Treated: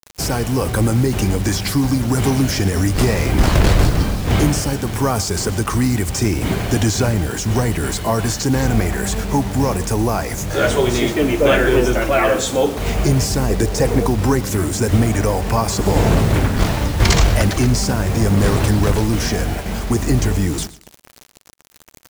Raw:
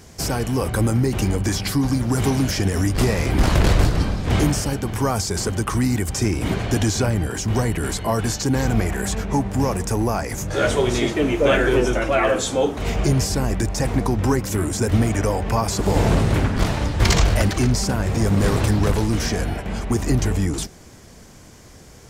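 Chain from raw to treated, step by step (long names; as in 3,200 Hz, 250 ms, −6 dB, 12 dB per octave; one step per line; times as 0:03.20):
0:13.49–0:14.06: parametric band 450 Hz +11.5 dB 0.42 octaves
bit-depth reduction 6 bits, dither none
repeating echo 121 ms, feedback 27%, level −18.5 dB
level +3 dB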